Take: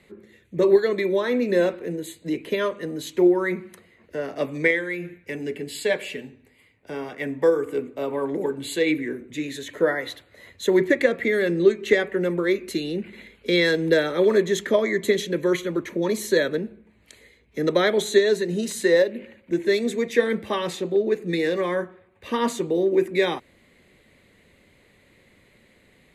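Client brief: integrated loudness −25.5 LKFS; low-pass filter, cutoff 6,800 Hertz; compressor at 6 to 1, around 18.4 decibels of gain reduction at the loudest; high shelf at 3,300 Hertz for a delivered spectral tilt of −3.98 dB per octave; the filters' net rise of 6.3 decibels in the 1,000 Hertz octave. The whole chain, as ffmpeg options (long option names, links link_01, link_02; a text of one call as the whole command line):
ffmpeg -i in.wav -af "lowpass=6800,equalizer=frequency=1000:width_type=o:gain=7,highshelf=frequency=3300:gain=6,acompressor=threshold=-32dB:ratio=6,volume=10dB" out.wav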